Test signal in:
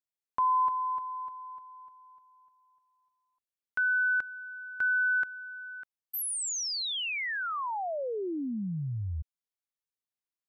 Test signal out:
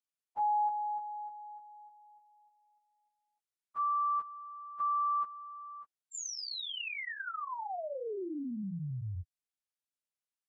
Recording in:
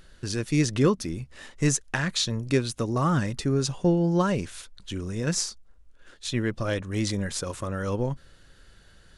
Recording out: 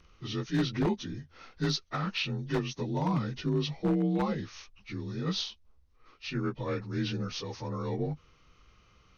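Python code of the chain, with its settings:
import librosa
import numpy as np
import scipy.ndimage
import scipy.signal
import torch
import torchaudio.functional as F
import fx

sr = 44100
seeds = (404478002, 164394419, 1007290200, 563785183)

y = fx.partial_stretch(x, sr, pct=86)
y = 10.0 ** (-16.5 / 20.0) * (np.abs((y / 10.0 ** (-16.5 / 20.0) + 3.0) % 4.0 - 2.0) - 1.0)
y = F.gain(torch.from_numpy(y), -4.0).numpy()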